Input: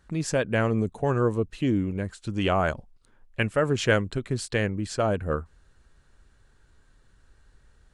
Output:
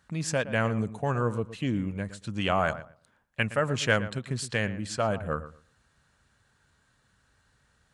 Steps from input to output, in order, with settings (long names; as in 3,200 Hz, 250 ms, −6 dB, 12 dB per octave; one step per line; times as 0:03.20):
high-pass filter 110 Hz 12 dB per octave
parametric band 360 Hz −9 dB 0.95 octaves
feedback echo with a low-pass in the loop 116 ms, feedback 20%, low-pass 2,200 Hz, level −13.5 dB